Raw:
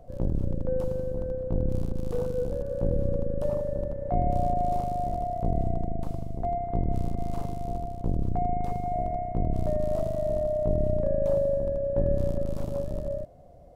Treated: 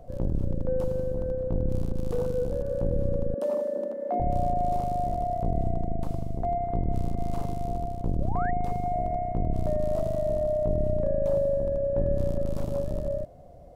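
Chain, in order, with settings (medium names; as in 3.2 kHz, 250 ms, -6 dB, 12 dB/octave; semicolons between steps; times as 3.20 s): 3.34–4.20 s: steep high-pass 210 Hz 72 dB/octave; in parallel at +2 dB: peak limiter -23.5 dBFS, peak gain reduction 10 dB; 8.20–8.51 s: on the sum: painted sound rise 510–2000 Hz -33 dBFS; trim -4.5 dB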